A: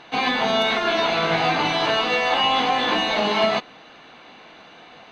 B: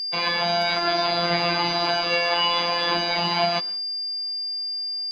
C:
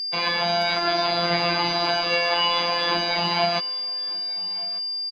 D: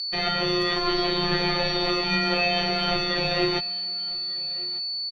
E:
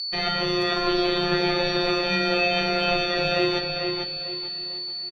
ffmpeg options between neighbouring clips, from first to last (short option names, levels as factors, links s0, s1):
-af "afftfilt=real='hypot(re,im)*cos(PI*b)':imag='0':win_size=1024:overlap=0.75,agate=range=0.0224:threshold=0.0141:ratio=3:detection=peak,aeval=exprs='val(0)+0.0501*sin(2*PI*4800*n/s)':c=same"
-af "aecho=1:1:1194|2388:0.0794|0.0135"
-af "afreqshift=-330,volume=0.841"
-filter_complex "[0:a]asplit=2[s0][s1];[s1]adelay=446,lowpass=f=4100:p=1,volume=0.596,asplit=2[s2][s3];[s3]adelay=446,lowpass=f=4100:p=1,volume=0.41,asplit=2[s4][s5];[s5]adelay=446,lowpass=f=4100:p=1,volume=0.41,asplit=2[s6][s7];[s7]adelay=446,lowpass=f=4100:p=1,volume=0.41,asplit=2[s8][s9];[s9]adelay=446,lowpass=f=4100:p=1,volume=0.41[s10];[s0][s2][s4][s6][s8][s10]amix=inputs=6:normalize=0"